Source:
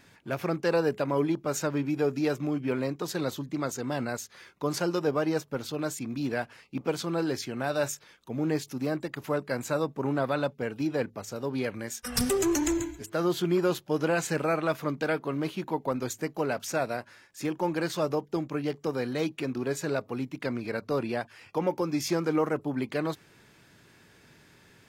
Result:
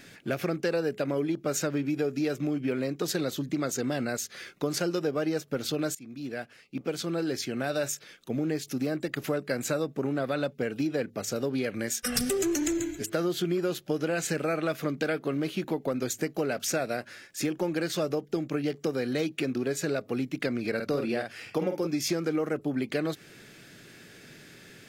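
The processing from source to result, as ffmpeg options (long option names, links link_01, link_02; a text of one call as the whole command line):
ffmpeg -i in.wav -filter_complex "[0:a]asettb=1/sr,asplit=3[link_01][link_02][link_03];[link_01]atrim=end=20.754[link_04];[link_02]atrim=start=20.75:end=21.87,asetpts=PTS-STARTPTS,afade=type=in:duration=0.004:curve=qsin,afade=type=out:start_time=1.116:duration=0.004:curve=qsin,asplit=2[link_05][link_06];[link_06]adelay=48,volume=-6dB[link_07];[link_05][link_07]amix=inputs=2:normalize=0,atrim=end_sample=49392[link_08];[link_03]atrim=start=21.866[link_09];[link_04][link_08]acrossfade=duration=0.004:curve1=hsin:curve2=qsin[link_10];[link_10][link_09]acrossfade=duration=0.004:curve1=qsin:curve2=hsin,asplit=2[link_11][link_12];[link_11]atrim=end=5.95,asetpts=PTS-STARTPTS,afade=type=out:start_time=5.946:duration=0.004:curve=hsin:silence=0.105925[link_13];[link_12]atrim=start=5.95,asetpts=PTS-STARTPTS,afade=type=in:duration=4.03:curve=qsin:silence=0.105925[link_14];[link_13][link_14]concat=n=2:v=0:a=1,equalizer=frequency=960:width_type=o:width=0.49:gain=-13,acompressor=threshold=-34dB:ratio=5,equalizer=frequency=68:width_type=o:width=1:gain=-13.5,volume=8.5dB" out.wav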